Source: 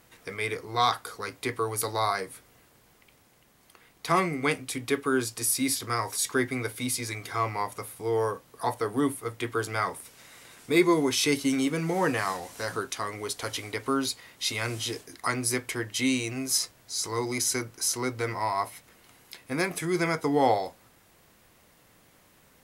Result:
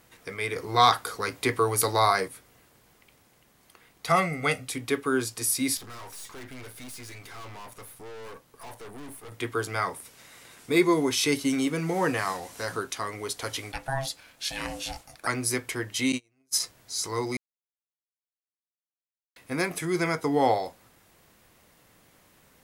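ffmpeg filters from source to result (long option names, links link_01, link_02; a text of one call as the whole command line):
ffmpeg -i in.wav -filter_complex "[0:a]asettb=1/sr,asplit=3[link_01][link_02][link_03];[link_01]atrim=end=0.564[link_04];[link_02]atrim=start=0.56:end=2.28,asetpts=PTS-STARTPTS,afade=type=in:duration=0.004:curve=qsin,afade=type=out:start_time=1.716:duration=0.004:curve=qsin,acontrast=29[link_05];[link_03]atrim=start=2.276[link_06];[link_04][link_05]acrossfade=duration=0.004:curve1=hsin:curve2=qsin[link_07];[link_07][link_06]acrossfade=duration=0.004:curve1=qsin:curve2=hsin,asettb=1/sr,asplit=3[link_08][link_09][link_10];[link_08]atrim=end=4.064[link_11];[link_09]atrim=start=4.06:end=4.67,asetpts=PTS-STARTPTS,afade=type=in:duration=0.004:curve=qsin,afade=type=out:start_time=0.606:duration=0.004:curve=qsin,aecho=1:1:1.5:0.65,atrim=end_sample=26901[link_12];[link_10]atrim=start=4.666[link_13];[link_11][link_12]acrossfade=duration=0.004:curve1=hsin:curve2=qsin[link_14];[link_14][link_13]acrossfade=duration=0.004:curve1=qsin:curve2=hsin,asettb=1/sr,asplit=3[link_15][link_16][link_17];[link_15]atrim=end=5.774[link_18];[link_16]atrim=start=5.77:end=9.32,asetpts=PTS-STARTPTS,afade=type=in:duration=0.004:curve=qsin,afade=type=out:start_time=3.546:duration=0.004:curve=qsin,aeval=exprs='(tanh(112*val(0)+0.65)-tanh(0.65))/112':channel_layout=same[link_19];[link_17]atrim=start=9.316[link_20];[link_18][link_19]acrossfade=duration=0.004:curve1=hsin:curve2=qsin[link_21];[link_21][link_20]acrossfade=duration=0.004:curve1=qsin:curve2=hsin,asettb=1/sr,asplit=3[link_22][link_23][link_24];[link_22]atrim=end=13.724[link_25];[link_23]atrim=start=13.72:end=15.27,asetpts=PTS-STARTPTS,afade=type=in:duration=0.004:curve=qsin,afade=type=out:start_time=1.546:duration=0.004:curve=qsin,aeval=exprs='val(0)*sin(2*PI*400*n/s)':channel_layout=same[link_26];[link_24]atrim=start=15.266[link_27];[link_25][link_26]acrossfade=duration=0.004:curve1=hsin:curve2=qsin[link_28];[link_28][link_27]acrossfade=duration=0.004:curve1=qsin:curve2=hsin,asettb=1/sr,asplit=3[link_29][link_30][link_31];[link_29]atrim=end=16.124[link_32];[link_30]atrim=start=16.12:end=16.6,asetpts=PTS-STARTPTS,afade=type=in:duration=0.004:curve=qsin,afade=type=out:start_time=0.476:duration=0.004:curve=qsin,agate=range=-37dB:threshold=-27dB:ratio=16:release=100:detection=peak[link_33];[link_31]atrim=start=16.596[link_34];[link_32][link_33]acrossfade=duration=0.004:curve1=hsin:curve2=qsin[link_35];[link_35][link_34]acrossfade=duration=0.004:curve1=qsin:curve2=hsin,asplit=3[link_36][link_37][link_38];[link_36]atrim=end=17.37,asetpts=PTS-STARTPTS,afade=type=out:start_time=17.366:duration=0.004:curve=hsin[link_39];[link_37]atrim=start=17.37:end=19.36,asetpts=PTS-STARTPTS,volume=0[link_40];[link_38]atrim=start=19.36,asetpts=PTS-STARTPTS,afade=type=in:duration=0.004:curve=hsin[link_41];[link_39][link_40][link_41]concat=n=3:v=0:a=1" out.wav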